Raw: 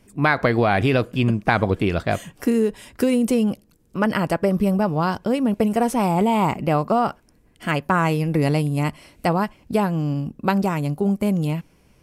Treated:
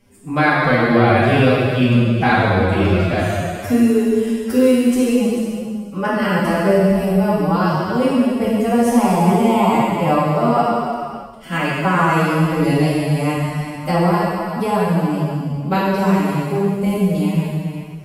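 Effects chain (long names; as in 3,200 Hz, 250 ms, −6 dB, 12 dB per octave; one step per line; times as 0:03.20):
delay that plays each chunk backwards 191 ms, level −12 dB
reverb whose tail is shaped and stops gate 460 ms falling, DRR −7 dB
phase-vocoder stretch with locked phases 1.5×
level −3 dB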